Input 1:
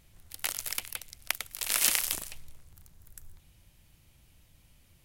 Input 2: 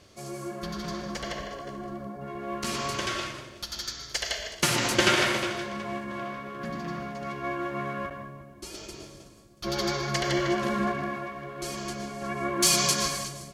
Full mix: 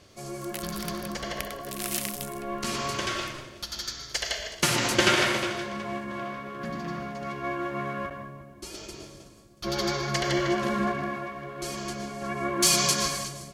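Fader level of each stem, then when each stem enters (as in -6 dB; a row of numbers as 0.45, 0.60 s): -6.0, +0.5 dB; 0.10, 0.00 s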